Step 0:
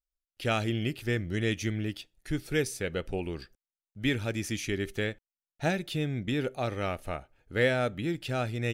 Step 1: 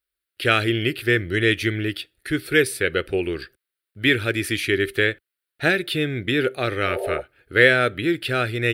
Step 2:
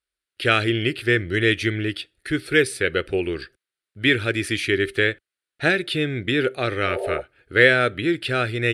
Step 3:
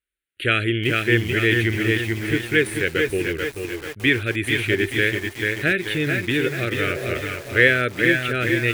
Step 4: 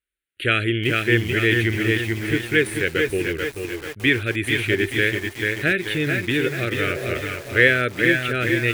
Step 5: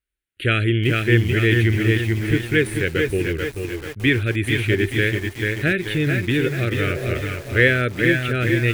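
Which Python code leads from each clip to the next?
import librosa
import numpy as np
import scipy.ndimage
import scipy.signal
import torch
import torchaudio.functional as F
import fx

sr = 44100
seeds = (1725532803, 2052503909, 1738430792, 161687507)

y1 = scipy.signal.sosfilt(scipy.signal.butter(2, 64.0, 'highpass', fs=sr, output='sos'), x)
y1 = fx.spec_repair(y1, sr, seeds[0], start_s=6.89, length_s=0.29, low_hz=370.0, high_hz=910.0, source='before')
y1 = fx.curve_eq(y1, sr, hz=(110.0, 210.0, 370.0, 880.0, 1500.0, 2700.0, 4300.0, 6400.0, 9100.0), db=(0, -6, 7, -6, 10, 6, 6, -10, 5))
y1 = y1 * librosa.db_to_amplitude(6.0)
y2 = scipy.signal.sosfilt(scipy.signal.butter(4, 10000.0, 'lowpass', fs=sr, output='sos'), y1)
y3 = fx.fixed_phaser(y2, sr, hz=2200.0, stages=4)
y3 = y3 + 10.0 ** (-9.5 / 20.0) * np.pad(y3, (int(444 * sr / 1000.0), 0))[:len(y3)]
y3 = fx.echo_crushed(y3, sr, ms=435, feedback_pct=55, bits=6, wet_db=-5.0)
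y3 = y3 * librosa.db_to_amplitude(1.0)
y4 = y3
y5 = fx.low_shelf(y4, sr, hz=220.0, db=10.0)
y5 = y5 * librosa.db_to_amplitude(-1.5)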